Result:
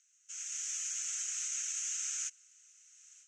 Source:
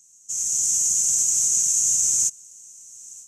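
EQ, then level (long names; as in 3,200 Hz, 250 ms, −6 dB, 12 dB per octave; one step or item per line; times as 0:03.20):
Butterworth high-pass 1,300 Hz 72 dB per octave
flat-topped band-pass 1,700 Hz, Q 0.88
+4.5 dB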